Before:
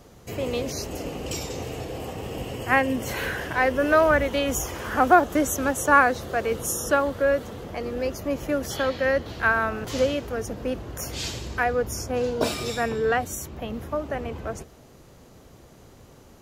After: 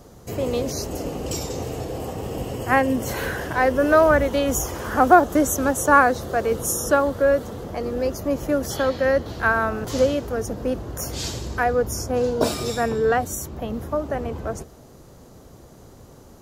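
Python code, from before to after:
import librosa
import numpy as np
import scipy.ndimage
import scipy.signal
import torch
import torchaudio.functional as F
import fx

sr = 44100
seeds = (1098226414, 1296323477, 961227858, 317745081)

y = fx.peak_eq(x, sr, hz=2500.0, db=-7.5, octaves=1.2)
y = F.gain(torch.from_numpy(y), 4.0).numpy()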